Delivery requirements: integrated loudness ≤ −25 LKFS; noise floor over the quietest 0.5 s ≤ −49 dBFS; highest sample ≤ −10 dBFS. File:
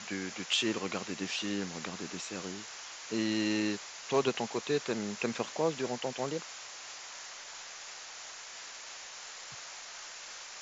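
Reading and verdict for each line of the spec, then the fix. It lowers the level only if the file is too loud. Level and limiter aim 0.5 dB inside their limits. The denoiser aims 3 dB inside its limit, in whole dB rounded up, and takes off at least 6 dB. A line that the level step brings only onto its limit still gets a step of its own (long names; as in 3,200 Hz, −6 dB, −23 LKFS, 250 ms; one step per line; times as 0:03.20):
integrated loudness −36.0 LKFS: in spec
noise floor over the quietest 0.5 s −46 dBFS: out of spec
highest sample −15.0 dBFS: in spec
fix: broadband denoise 6 dB, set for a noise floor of −46 dBFS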